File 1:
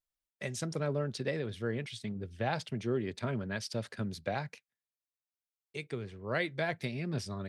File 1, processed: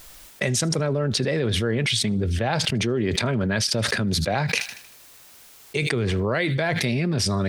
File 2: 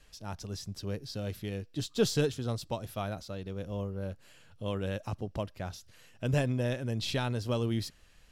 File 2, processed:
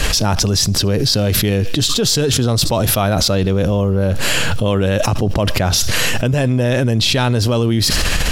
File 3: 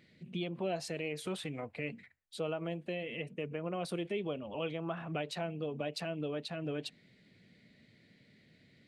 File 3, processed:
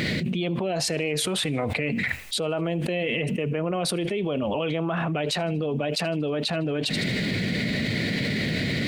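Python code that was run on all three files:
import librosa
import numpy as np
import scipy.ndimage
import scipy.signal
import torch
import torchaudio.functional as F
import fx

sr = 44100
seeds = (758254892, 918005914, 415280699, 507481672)

p1 = x + fx.echo_wet_highpass(x, sr, ms=78, feedback_pct=43, hz=3000.0, wet_db=-22.0, dry=0)
p2 = fx.env_flatten(p1, sr, amount_pct=100)
y = p2 * librosa.db_to_amplitude(6.5)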